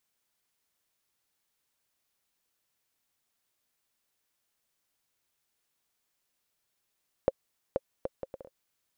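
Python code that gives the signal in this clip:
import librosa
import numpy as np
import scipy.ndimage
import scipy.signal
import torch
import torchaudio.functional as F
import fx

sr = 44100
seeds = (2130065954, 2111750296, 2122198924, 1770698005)

y = fx.bouncing_ball(sr, first_gap_s=0.48, ratio=0.61, hz=534.0, decay_ms=34.0, level_db=-11.5)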